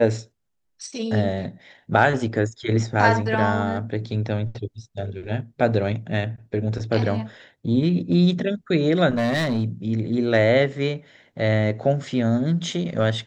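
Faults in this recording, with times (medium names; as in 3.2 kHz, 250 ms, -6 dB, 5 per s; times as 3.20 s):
9.16–9.64 s: clipped -18 dBFS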